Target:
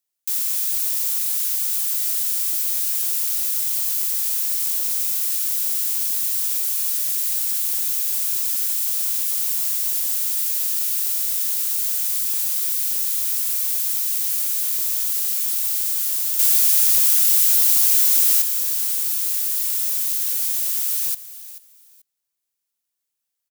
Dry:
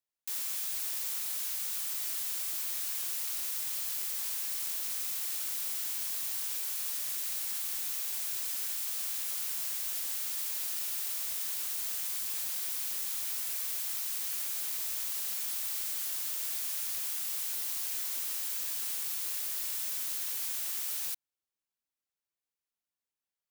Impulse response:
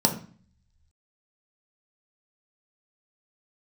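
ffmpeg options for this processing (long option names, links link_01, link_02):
-filter_complex "[0:a]asettb=1/sr,asplit=3[link_01][link_02][link_03];[link_01]atrim=end=16.394[link_04];[link_02]atrim=start=16.39:end=18.42,asetpts=PTS-STARTPTS,afade=type=in:duration=0.004:curve=qsin,afade=type=out:start_time=2.026:duration=0.004:curve=qsin,acontrast=67[link_05];[link_03]atrim=start=18.416[link_06];[link_04][link_05]acrossfade=duration=0.004:curve1=hsin:curve2=qsin[link_07];[link_07][link_06]acrossfade=duration=0.004:curve1=qsin:curve2=hsin,highshelf=frequency=4000:gain=11.5,aecho=1:1:436|872:0.168|0.0369,volume=2dB"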